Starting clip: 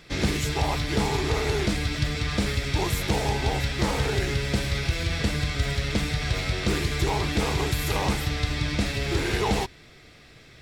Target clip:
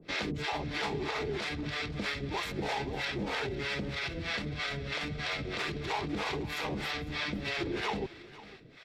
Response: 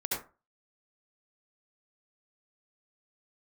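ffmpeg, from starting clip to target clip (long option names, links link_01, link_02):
-filter_complex "[0:a]acrossover=split=550[link_01][link_02];[link_01]aeval=exprs='val(0)*(1-1/2+1/2*cos(2*PI*2.6*n/s))':channel_layout=same[link_03];[link_02]aeval=exprs='val(0)*(1-1/2-1/2*cos(2*PI*2.6*n/s))':channel_layout=same[link_04];[link_03][link_04]amix=inputs=2:normalize=0,atempo=1.2,lowshelf=frequency=160:gain=4,alimiter=level_in=1dB:limit=-24dB:level=0:latency=1:release=61,volume=-1dB,acrossover=split=160 4900:gain=0.178 1 0.158[link_05][link_06][link_07];[link_05][link_06][link_07]amix=inputs=3:normalize=0,asplit=2[link_08][link_09];[link_09]aecho=0:1:502:0.126[link_10];[link_08][link_10]amix=inputs=2:normalize=0,volume=2.5dB"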